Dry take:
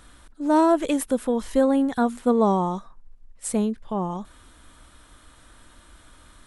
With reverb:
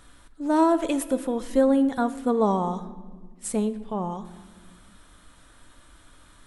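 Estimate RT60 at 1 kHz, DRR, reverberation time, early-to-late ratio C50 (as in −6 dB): 1.4 s, 9.5 dB, 1.6 s, 14.0 dB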